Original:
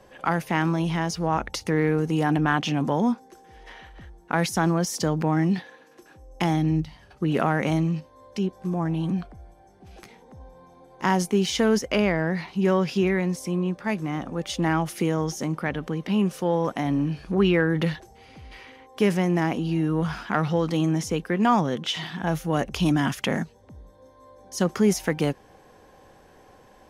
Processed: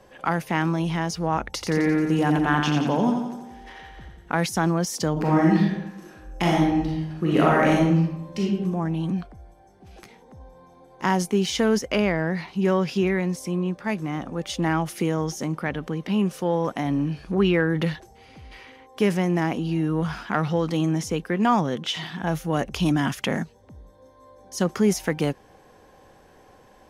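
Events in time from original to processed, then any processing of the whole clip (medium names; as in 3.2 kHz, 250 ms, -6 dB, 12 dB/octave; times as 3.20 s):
1.53–4.37 s: feedback delay 87 ms, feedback 56%, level -5 dB
5.12–8.46 s: reverb throw, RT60 0.87 s, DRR -3.5 dB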